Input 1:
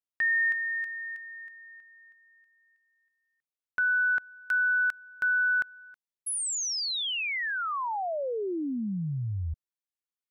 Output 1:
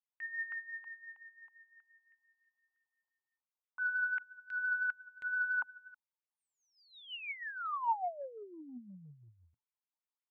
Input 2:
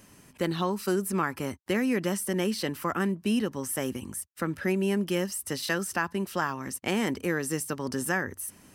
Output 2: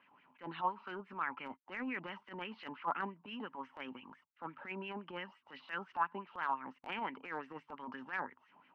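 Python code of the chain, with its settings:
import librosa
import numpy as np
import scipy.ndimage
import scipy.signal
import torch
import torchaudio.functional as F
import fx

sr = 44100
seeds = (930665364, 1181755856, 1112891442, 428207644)

y = fx.cabinet(x, sr, low_hz=100.0, low_slope=12, high_hz=3200.0, hz=(120.0, 170.0, 260.0, 910.0, 1800.0, 2900.0), db=(4, 7, 9, 7, -9, 5))
y = fx.filter_lfo_bandpass(y, sr, shape='sine', hz=5.8, low_hz=820.0, high_hz=2100.0, q=4.2)
y = fx.transient(y, sr, attack_db=-12, sustain_db=0)
y = y * 10.0 ** (3.0 / 20.0)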